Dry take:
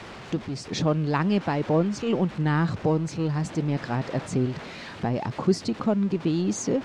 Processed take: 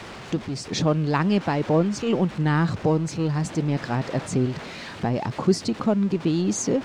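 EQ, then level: high shelf 7900 Hz +7 dB; +2.0 dB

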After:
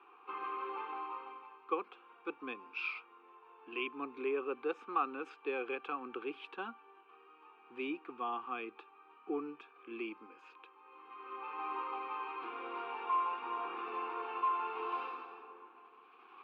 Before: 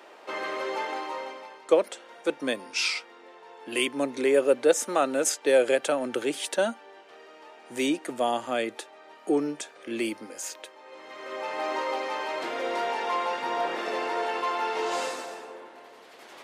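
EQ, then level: vowel filter a; Chebyshev band-stop 390–1000 Hz, order 2; air absorption 410 m; +8.5 dB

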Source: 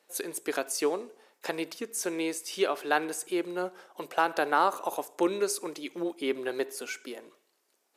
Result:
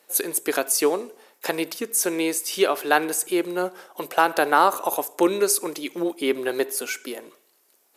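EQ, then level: bell 13000 Hz +10 dB 0.76 oct; +7.0 dB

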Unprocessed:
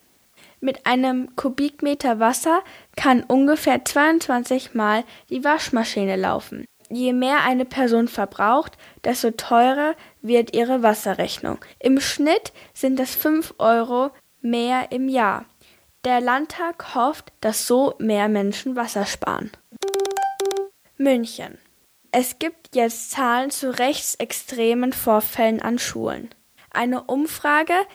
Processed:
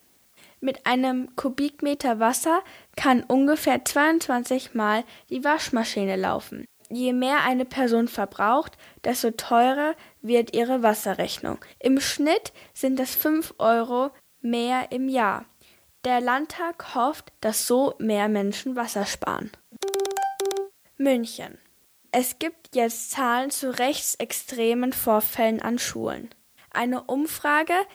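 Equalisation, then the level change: high shelf 7300 Hz +4 dB; -3.5 dB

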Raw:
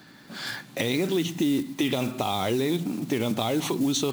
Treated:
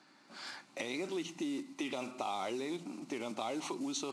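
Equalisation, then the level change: speaker cabinet 400–9400 Hz, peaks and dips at 460 Hz -8 dB, 680 Hz -3 dB, 1700 Hz -9 dB, 3400 Hz -8 dB; high shelf 5300 Hz -6.5 dB; -6.0 dB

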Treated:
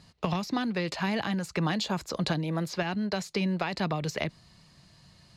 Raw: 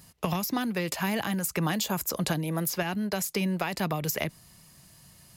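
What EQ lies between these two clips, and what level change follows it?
air absorption 110 m; bell 4200 Hz +8 dB 0.34 oct; 0.0 dB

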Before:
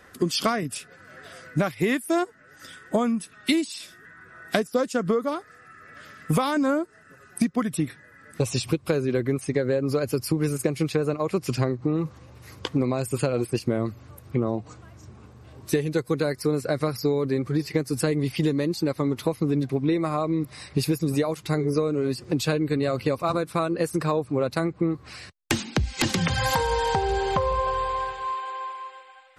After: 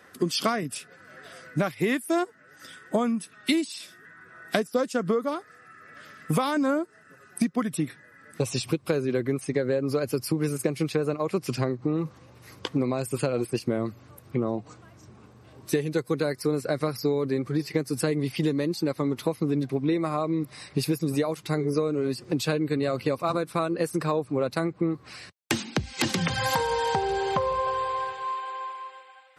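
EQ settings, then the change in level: HPF 120 Hz; notch 6900 Hz, Q 24; -1.5 dB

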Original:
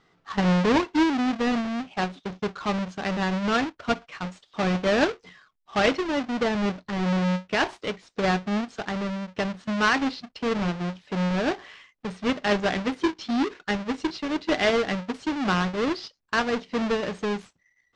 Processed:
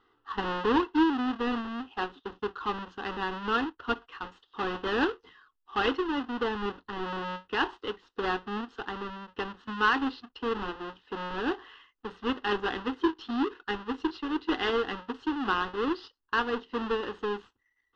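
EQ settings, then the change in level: synth low-pass 2700 Hz, resonance Q 3.7; fixed phaser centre 620 Hz, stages 6; -2.0 dB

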